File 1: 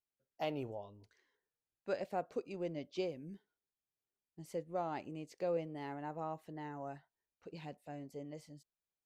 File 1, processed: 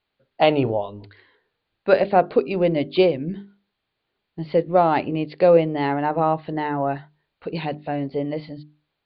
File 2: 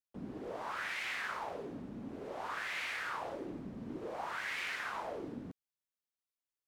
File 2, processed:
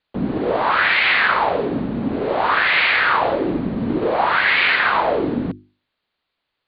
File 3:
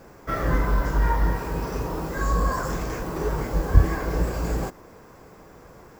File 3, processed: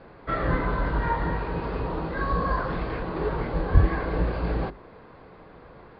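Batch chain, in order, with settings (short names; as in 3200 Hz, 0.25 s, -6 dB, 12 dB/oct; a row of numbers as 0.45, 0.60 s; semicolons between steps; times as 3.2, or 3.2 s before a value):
steep low-pass 4500 Hz 96 dB/oct; notches 50/100/150/200/250/300/350/400 Hz; normalise peaks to -3 dBFS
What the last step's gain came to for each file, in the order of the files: +22.0, +23.0, 0.0 dB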